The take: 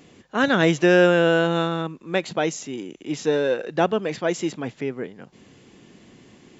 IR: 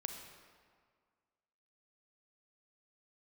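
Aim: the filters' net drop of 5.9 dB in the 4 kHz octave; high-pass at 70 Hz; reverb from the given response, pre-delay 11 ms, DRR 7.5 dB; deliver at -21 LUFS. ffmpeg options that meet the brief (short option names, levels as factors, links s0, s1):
-filter_complex "[0:a]highpass=70,equalizer=f=4000:t=o:g=-8.5,asplit=2[s0][s1];[1:a]atrim=start_sample=2205,adelay=11[s2];[s1][s2]afir=irnorm=-1:irlink=0,volume=0.473[s3];[s0][s3]amix=inputs=2:normalize=0,volume=1.06"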